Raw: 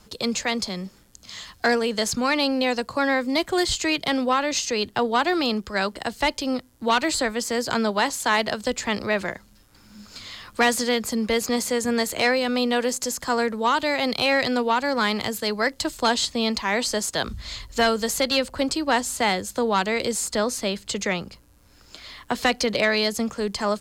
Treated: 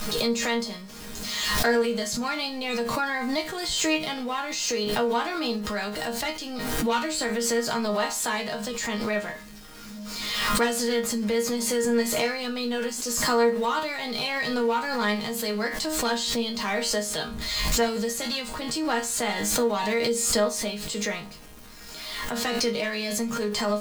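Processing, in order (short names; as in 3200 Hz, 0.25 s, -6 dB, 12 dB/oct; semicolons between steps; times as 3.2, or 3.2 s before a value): zero-crossing step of -33.5 dBFS; resonator bank D#3 sus4, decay 0.28 s; backwards sustainer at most 30 dB/s; gain +8 dB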